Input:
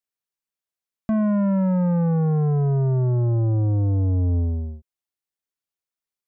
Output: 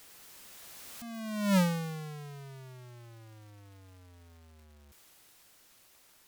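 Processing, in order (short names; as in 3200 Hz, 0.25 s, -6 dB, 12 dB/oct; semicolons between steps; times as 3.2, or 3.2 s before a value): infinite clipping; Doppler pass-by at 1.57, 23 m/s, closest 1.2 m; crackle 560/s -55 dBFS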